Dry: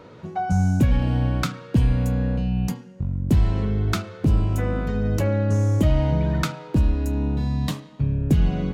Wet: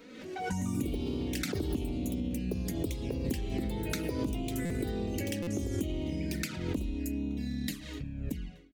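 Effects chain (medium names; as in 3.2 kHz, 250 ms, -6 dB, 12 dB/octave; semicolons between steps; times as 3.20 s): fade out at the end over 0.90 s; ten-band graphic EQ 125 Hz -9 dB, 250 Hz +11 dB, 1 kHz -9 dB, 2 kHz +8 dB; echo from a far wall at 150 m, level -23 dB; touch-sensitive flanger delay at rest 4.7 ms, full sweep at -16 dBFS; pre-emphasis filter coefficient 0.8; ever faster or slower copies 215 ms, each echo +4 st, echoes 2; compression, threshold -33 dBFS, peak gain reduction 10.5 dB; buffer glitch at 4.65/5.42 s, samples 256, times 8; swell ahead of each attack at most 44 dB/s; trim +3 dB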